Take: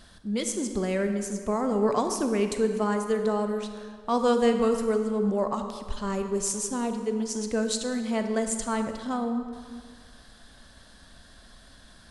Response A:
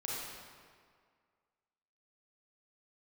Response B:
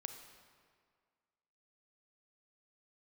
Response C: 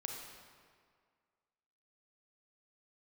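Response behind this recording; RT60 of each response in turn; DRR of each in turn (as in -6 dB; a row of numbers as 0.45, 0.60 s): B; 1.9, 1.9, 1.9 s; -6.0, 6.0, 1.0 dB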